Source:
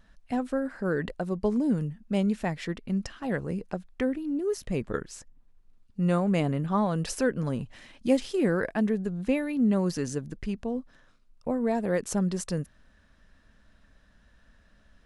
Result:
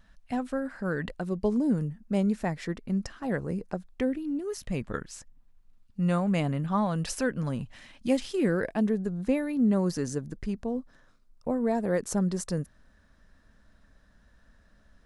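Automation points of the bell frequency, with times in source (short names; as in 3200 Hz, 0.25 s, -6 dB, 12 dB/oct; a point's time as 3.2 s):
bell -6 dB 0.8 oct
1.11 s 390 Hz
1.65 s 3000 Hz
3.78 s 3000 Hz
4.41 s 400 Hz
8.21 s 400 Hz
8.98 s 2800 Hz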